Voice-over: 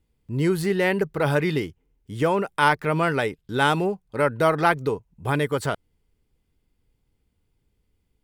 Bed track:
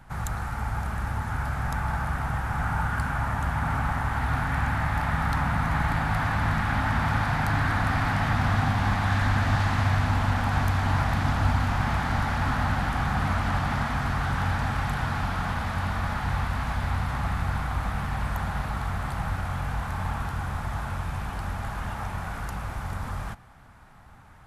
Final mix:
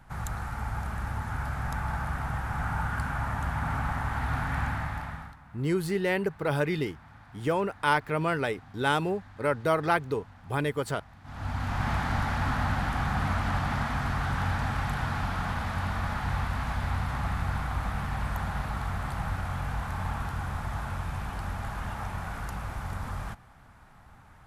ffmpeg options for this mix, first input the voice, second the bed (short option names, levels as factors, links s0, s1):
-filter_complex "[0:a]adelay=5250,volume=0.531[s0];[1:a]volume=11.2,afade=t=out:st=4.62:d=0.74:silence=0.0668344,afade=t=in:st=11.23:d=0.67:silence=0.0595662[s1];[s0][s1]amix=inputs=2:normalize=0"